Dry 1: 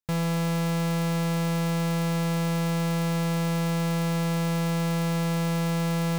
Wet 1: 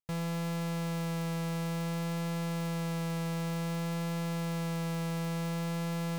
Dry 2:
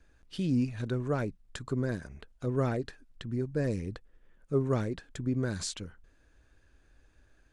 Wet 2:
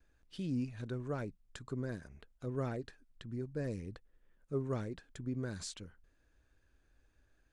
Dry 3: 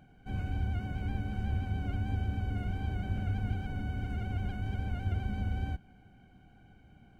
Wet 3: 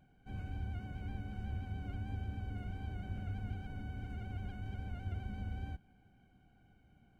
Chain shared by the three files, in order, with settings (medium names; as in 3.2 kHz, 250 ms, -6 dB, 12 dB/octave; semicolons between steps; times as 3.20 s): vibrato 0.55 Hz 11 cents; trim -8 dB